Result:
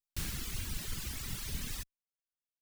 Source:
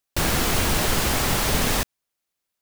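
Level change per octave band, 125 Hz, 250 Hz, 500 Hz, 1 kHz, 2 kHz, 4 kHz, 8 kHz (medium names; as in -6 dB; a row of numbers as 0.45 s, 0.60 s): -15.5 dB, -20.5 dB, -29.0 dB, -28.0 dB, -21.0 dB, -18.0 dB, -16.5 dB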